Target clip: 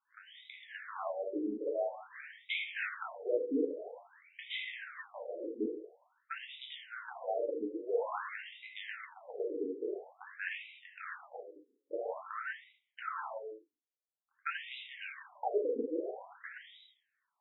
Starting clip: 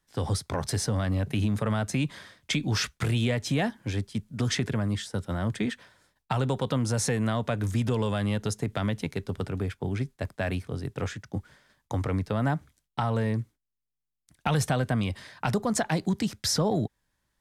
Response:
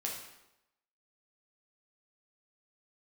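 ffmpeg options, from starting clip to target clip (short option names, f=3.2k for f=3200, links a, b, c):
-filter_complex "[0:a]acrossover=split=2700[a][b];[b]acompressor=threshold=-40dB:ratio=4:attack=1:release=60[c];[a][c]amix=inputs=2:normalize=0[d];[1:a]atrim=start_sample=2205,afade=t=out:st=0.31:d=0.01,atrim=end_sample=14112[e];[d][e]afir=irnorm=-1:irlink=0,afftfilt=real='re*between(b*sr/1024,360*pow(2800/360,0.5+0.5*sin(2*PI*0.49*pts/sr))/1.41,360*pow(2800/360,0.5+0.5*sin(2*PI*0.49*pts/sr))*1.41)':imag='im*between(b*sr/1024,360*pow(2800/360,0.5+0.5*sin(2*PI*0.49*pts/sr))/1.41,360*pow(2800/360,0.5+0.5*sin(2*PI*0.49*pts/sr))*1.41)':win_size=1024:overlap=0.75,volume=-1dB"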